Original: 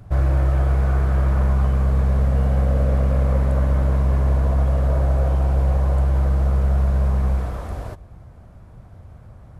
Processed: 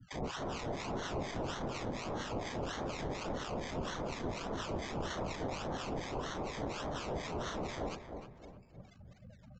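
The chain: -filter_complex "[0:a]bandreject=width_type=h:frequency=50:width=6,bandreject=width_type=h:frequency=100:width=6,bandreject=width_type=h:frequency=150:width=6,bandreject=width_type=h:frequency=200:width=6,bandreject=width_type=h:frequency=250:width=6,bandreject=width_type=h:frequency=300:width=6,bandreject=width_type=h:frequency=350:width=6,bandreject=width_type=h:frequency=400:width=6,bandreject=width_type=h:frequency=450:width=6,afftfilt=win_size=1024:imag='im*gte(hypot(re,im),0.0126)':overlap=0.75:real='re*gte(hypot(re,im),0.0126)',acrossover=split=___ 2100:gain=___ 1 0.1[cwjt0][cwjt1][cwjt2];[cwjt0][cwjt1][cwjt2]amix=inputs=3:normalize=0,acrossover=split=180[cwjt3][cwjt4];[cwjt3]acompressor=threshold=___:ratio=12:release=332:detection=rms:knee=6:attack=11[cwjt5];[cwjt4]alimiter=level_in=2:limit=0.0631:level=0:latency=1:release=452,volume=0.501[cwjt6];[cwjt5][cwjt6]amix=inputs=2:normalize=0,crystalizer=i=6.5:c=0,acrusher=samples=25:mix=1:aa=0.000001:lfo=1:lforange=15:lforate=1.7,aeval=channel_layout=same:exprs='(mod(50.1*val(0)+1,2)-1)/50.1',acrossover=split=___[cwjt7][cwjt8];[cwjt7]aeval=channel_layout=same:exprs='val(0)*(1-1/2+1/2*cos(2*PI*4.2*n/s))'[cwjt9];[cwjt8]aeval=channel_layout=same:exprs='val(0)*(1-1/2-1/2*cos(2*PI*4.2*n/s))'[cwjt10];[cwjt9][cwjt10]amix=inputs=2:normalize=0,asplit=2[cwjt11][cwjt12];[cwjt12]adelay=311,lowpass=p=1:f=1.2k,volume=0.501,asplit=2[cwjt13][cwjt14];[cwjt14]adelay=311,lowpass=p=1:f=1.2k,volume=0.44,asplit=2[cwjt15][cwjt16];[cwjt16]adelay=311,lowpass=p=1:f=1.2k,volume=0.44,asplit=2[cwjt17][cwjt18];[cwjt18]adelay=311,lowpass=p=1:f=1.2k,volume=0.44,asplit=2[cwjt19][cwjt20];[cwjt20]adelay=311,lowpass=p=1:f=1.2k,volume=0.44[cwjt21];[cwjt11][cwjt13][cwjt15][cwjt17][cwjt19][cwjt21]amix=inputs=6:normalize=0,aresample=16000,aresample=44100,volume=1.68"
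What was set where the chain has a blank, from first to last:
200, 0.112, 0.00447, 1000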